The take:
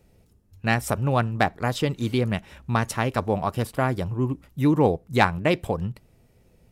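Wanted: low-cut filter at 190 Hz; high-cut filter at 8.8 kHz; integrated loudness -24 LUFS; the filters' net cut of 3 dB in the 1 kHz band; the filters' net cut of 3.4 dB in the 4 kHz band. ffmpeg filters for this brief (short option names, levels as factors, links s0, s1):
-af "highpass=190,lowpass=8800,equalizer=f=1000:t=o:g=-4,equalizer=f=4000:t=o:g=-4,volume=1.41"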